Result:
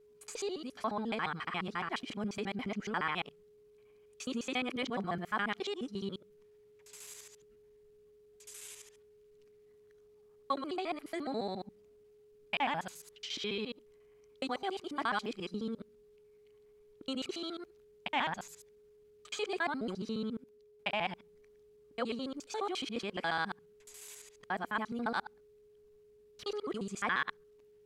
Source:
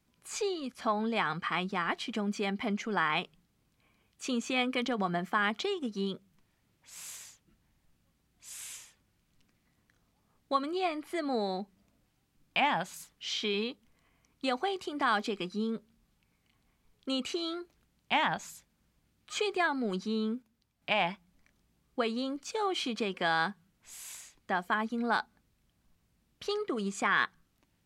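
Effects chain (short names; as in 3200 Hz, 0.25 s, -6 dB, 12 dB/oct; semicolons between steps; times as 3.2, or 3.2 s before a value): local time reversal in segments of 70 ms; whine 420 Hz -55 dBFS; gain -4.5 dB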